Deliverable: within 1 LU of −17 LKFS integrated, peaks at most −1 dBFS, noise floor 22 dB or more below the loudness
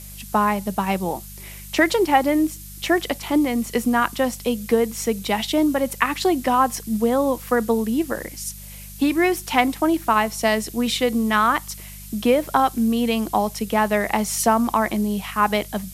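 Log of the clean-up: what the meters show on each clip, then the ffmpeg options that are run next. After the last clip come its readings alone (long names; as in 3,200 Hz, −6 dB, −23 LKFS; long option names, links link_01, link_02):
mains hum 50 Hz; hum harmonics up to 200 Hz; level of the hum −39 dBFS; background noise floor −38 dBFS; target noise floor −43 dBFS; integrated loudness −21.0 LKFS; sample peak −1.5 dBFS; target loudness −17.0 LKFS
→ -af "bandreject=frequency=50:width_type=h:width=4,bandreject=frequency=100:width_type=h:width=4,bandreject=frequency=150:width_type=h:width=4,bandreject=frequency=200:width_type=h:width=4"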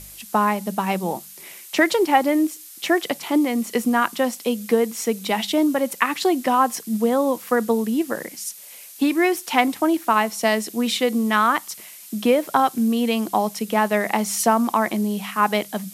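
mains hum none found; background noise floor −42 dBFS; target noise floor −43 dBFS
→ -af "afftdn=noise_reduction=6:noise_floor=-42"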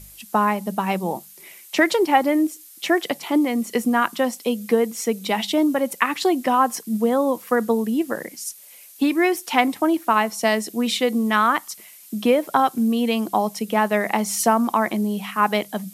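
background noise floor −45 dBFS; integrated loudness −21.0 LKFS; sample peak −1.5 dBFS; target loudness −17.0 LKFS
→ -af "volume=4dB,alimiter=limit=-1dB:level=0:latency=1"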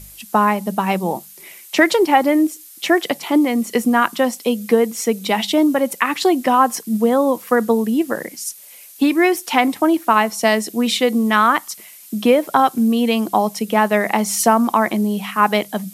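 integrated loudness −17.5 LKFS; sample peak −1.0 dBFS; background noise floor −41 dBFS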